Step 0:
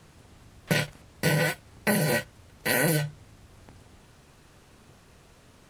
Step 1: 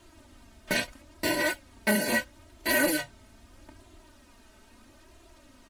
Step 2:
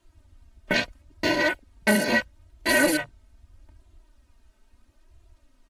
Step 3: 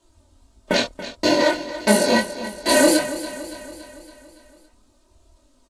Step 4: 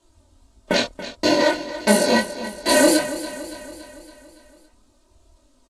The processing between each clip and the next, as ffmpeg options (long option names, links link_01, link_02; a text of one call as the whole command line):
ffmpeg -i in.wav -filter_complex "[0:a]aecho=1:1:3.2:0.91,flanger=delay=2.9:depth=1.7:regen=33:speed=0.77:shape=sinusoidal,asplit=2[link_01][link_02];[link_02]aeval=exprs='(mod(5.96*val(0)+1,2)-1)/5.96':channel_layout=same,volume=-11dB[link_03];[link_01][link_03]amix=inputs=2:normalize=0,volume=-1.5dB" out.wav
ffmpeg -i in.wav -af "afwtdn=0.0112,volume=4.5dB" out.wav
ffmpeg -i in.wav -af "flanger=delay=19.5:depth=7.1:speed=1.6,equalizer=frequency=250:width_type=o:width=1:gain=6,equalizer=frequency=500:width_type=o:width=1:gain=9,equalizer=frequency=1000:width_type=o:width=1:gain=7,equalizer=frequency=2000:width_type=o:width=1:gain=-4,equalizer=frequency=4000:width_type=o:width=1:gain=7,equalizer=frequency=8000:width_type=o:width=1:gain=12,aecho=1:1:282|564|846|1128|1410|1692:0.211|0.12|0.0687|0.0391|0.0223|0.0127,volume=1dB" out.wav
ffmpeg -i in.wav -af "aresample=32000,aresample=44100" out.wav